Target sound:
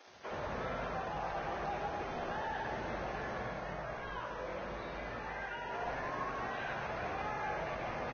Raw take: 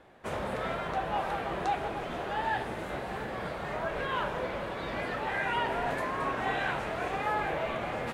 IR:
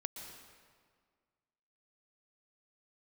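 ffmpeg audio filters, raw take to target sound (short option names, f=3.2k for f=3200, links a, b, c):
-filter_complex "[0:a]lowpass=4.3k,highshelf=f=2.1k:g=-4,alimiter=level_in=7dB:limit=-24dB:level=0:latency=1:release=35,volume=-7dB,flanger=delay=10:depth=8.3:regen=80:speed=2:shape=triangular,acrusher=bits=9:mix=0:aa=0.000001,asplit=3[a][b][c];[a]afade=t=out:st=3.44:d=0.02[d];[b]flanger=delay=16.5:depth=5.2:speed=1,afade=t=in:st=3.44:d=0.02,afade=t=out:st=5.72:d=0.02[e];[c]afade=t=in:st=5.72:d=0.02[f];[d][e][f]amix=inputs=3:normalize=0,acrossover=split=290[g][h];[g]adelay=70[i];[i][h]amix=inputs=2:normalize=0[j];[1:a]atrim=start_sample=2205,asetrate=79380,aresample=44100[k];[j][k]afir=irnorm=-1:irlink=0,volume=11dB" -ar 16000 -c:a libvorbis -b:a 16k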